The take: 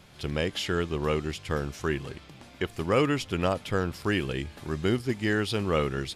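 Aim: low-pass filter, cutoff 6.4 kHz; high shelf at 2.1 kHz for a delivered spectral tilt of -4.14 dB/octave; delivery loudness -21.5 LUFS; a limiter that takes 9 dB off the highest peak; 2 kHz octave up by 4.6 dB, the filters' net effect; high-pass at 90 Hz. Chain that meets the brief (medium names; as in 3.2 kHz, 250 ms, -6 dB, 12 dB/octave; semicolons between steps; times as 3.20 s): high-pass 90 Hz; low-pass 6.4 kHz; peaking EQ 2 kHz +8.5 dB; treble shelf 2.1 kHz -5 dB; trim +11 dB; peak limiter -8.5 dBFS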